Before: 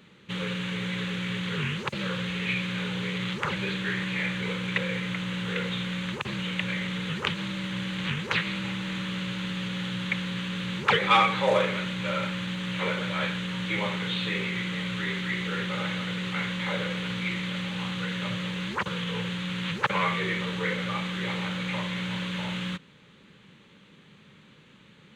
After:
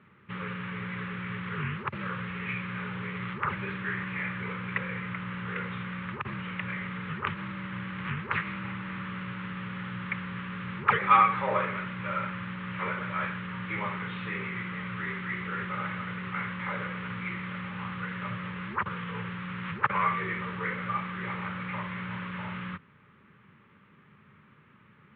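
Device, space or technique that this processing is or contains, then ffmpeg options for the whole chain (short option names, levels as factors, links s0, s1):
bass cabinet: -af "highpass=67,equalizer=f=93:t=q:w=4:g=6,equalizer=f=180:t=q:w=4:g=-4,equalizer=f=300:t=q:w=4:g=-6,equalizer=f=510:t=q:w=4:g=-8,equalizer=f=740:t=q:w=4:g=-4,equalizer=f=1200:t=q:w=4:g=6,lowpass=f=2200:w=0.5412,lowpass=f=2200:w=1.3066,volume=0.841"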